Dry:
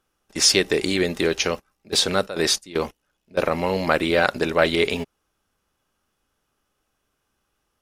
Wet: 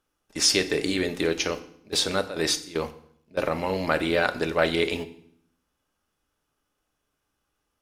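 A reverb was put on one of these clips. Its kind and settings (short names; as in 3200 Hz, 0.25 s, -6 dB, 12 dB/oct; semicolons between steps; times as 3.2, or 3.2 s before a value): FDN reverb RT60 0.64 s, low-frequency decay 1.4×, high-frequency decay 0.95×, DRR 9.5 dB; gain -4.5 dB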